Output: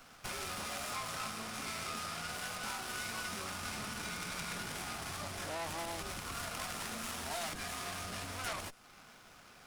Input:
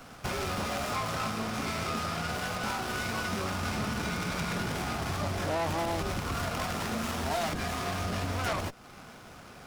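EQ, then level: peaking EQ 81 Hz -9.5 dB 2.9 oct; peaking EQ 480 Hz -6 dB 2.7 oct; dynamic bell 9.7 kHz, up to +6 dB, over -59 dBFS, Q 1.3; -4.5 dB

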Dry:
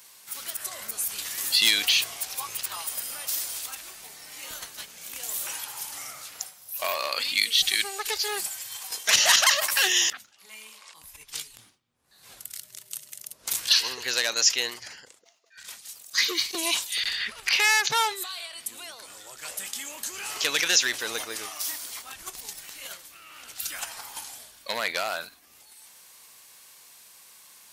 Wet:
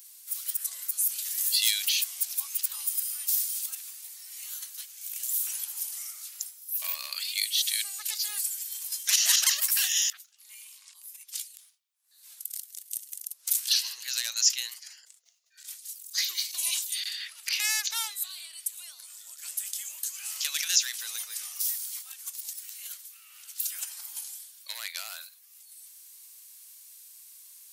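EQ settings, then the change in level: high-pass 680 Hz 12 dB/octave; differentiator; 0.0 dB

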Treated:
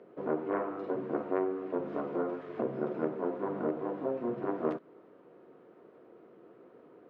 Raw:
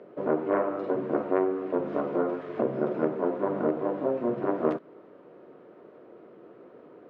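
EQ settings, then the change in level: band-stop 590 Hz, Q 14; -5.5 dB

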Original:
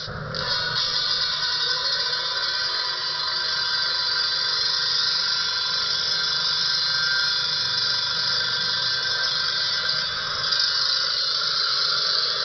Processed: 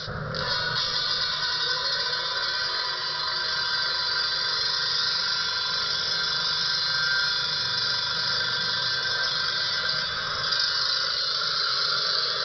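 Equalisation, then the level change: treble shelf 4.2 kHz -6 dB; 0.0 dB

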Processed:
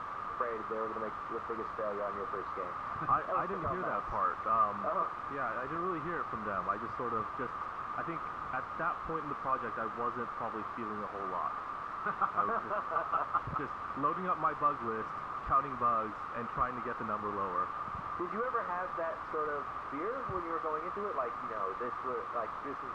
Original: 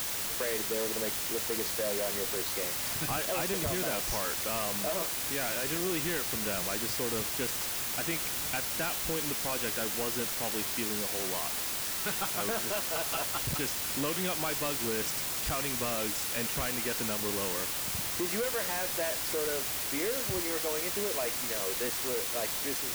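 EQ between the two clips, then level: resonant low-pass 1.2 kHz, resonance Q 11; -6.0 dB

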